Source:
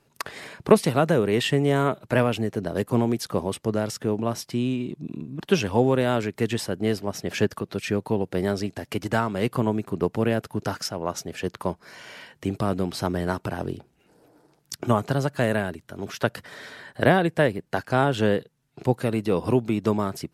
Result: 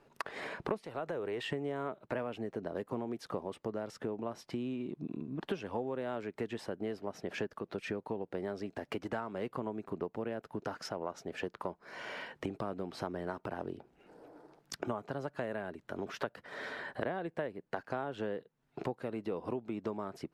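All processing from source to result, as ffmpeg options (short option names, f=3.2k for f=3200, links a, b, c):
-filter_complex "[0:a]asettb=1/sr,asplit=3[a][b][c];[a]atrim=end=0.864[d];[b]atrim=start=0.86:end=1.51,asetpts=PTS-STARTPTS,afade=t=in:d=0.004:c=qsin,afade=t=out:st=0.646:d=0.004:c=qsin,equalizer=f=210:t=o:w=0.95:g=-8,acompressor=threshold=-25dB:ratio=2:attack=3.2:release=140:knee=1:detection=peak[e];[c]atrim=start=1.506[f];[d][e]acrossfade=d=0.004:c1=hsin:c2=qsin[g];[g][f]acrossfade=d=0.004:c1=qsin:c2=hsin,lowpass=f=1.1k:p=1,equalizer=f=96:w=0.53:g=-13,acompressor=threshold=-42dB:ratio=5,volume=6dB"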